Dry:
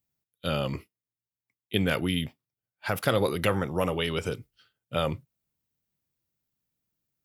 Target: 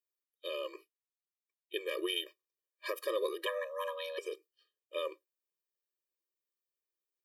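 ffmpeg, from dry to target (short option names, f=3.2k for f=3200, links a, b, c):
-filter_complex "[0:a]asplit=3[a][b][c];[a]afade=t=out:st=1.97:d=0.02[d];[b]acontrast=75,afade=t=in:st=1.97:d=0.02,afade=t=out:st=2.91:d=0.02[e];[c]afade=t=in:st=2.91:d=0.02[f];[d][e][f]amix=inputs=3:normalize=0,asettb=1/sr,asplit=3[g][h][i];[g]atrim=end=3.464[j];[h]atrim=start=3.46:end=4.18,asetpts=PTS-STARTPTS,afade=t=in:d=0.004:c=qsin,afade=t=out:st=0.716:d=0.004:c=qsin,afreqshift=400[k];[i]atrim=start=4.176[l];[j][k]acrossfade=d=0.004:c1=hsin:c2=qsin[m];[m][l]acrossfade=d=0.004:c1=qsin:c2=hsin,afftfilt=real='re*eq(mod(floor(b*sr/1024/320),2),1)':imag='im*eq(mod(floor(b*sr/1024/320),2),1)':win_size=1024:overlap=0.75,volume=-7dB"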